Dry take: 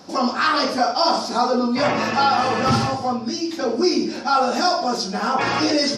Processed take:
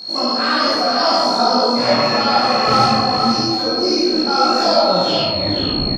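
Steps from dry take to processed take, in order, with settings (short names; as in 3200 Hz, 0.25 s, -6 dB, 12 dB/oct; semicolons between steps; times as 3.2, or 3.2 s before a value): tape stop at the end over 1.39 s; whine 4300 Hz -25 dBFS; on a send: echo 0.471 s -6.5 dB; on the sum: digital reverb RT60 1.2 s, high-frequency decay 0.4×, pre-delay 15 ms, DRR -5 dB; detuned doubles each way 22 cents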